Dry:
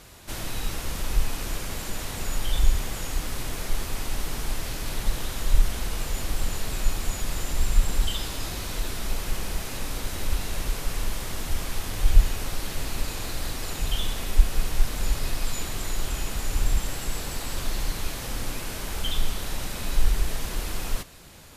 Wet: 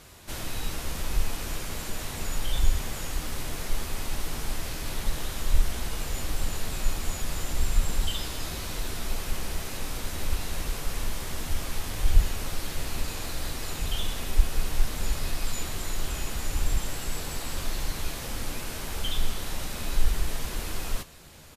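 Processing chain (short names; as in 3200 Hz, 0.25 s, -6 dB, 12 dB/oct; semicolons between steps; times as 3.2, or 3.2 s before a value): doubler 13 ms -10.5 dB; gain -2 dB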